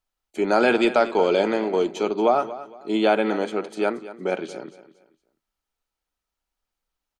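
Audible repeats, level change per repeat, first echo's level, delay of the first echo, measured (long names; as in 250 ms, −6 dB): 2, −10.0 dB, −15.5 dB, 230 ms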